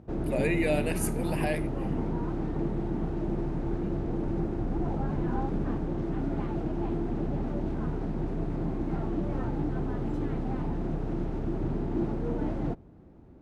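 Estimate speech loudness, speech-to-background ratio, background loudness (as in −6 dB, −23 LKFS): −31.5 LKFS, 0.5 dB, −32.0 LKFS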